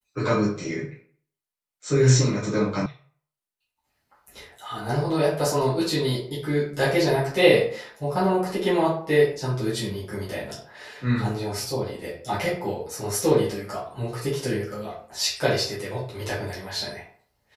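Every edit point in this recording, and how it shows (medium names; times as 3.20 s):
2.86 s: sound stops dead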